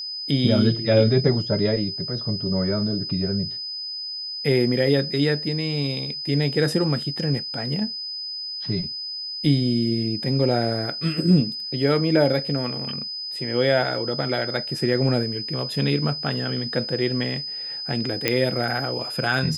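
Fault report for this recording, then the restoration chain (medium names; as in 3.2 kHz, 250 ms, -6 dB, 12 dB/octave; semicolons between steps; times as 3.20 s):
whine 5 kHz -29 dBFS
18.28 s: pop -4 dBFS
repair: de-click; band-stop 5 kHz, Q 30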